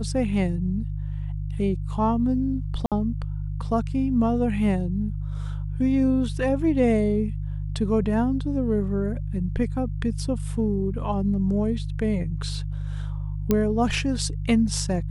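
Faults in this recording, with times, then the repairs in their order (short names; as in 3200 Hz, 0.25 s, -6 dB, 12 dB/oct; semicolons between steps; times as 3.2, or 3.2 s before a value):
hum 50 Hz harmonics 3 -29 dBFS
2.86–2.92 gap 57 ms
13.51 pop -8 dBFS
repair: de-click; de-hum 50 Hz, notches 3; interpolate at 2.86, 57 ms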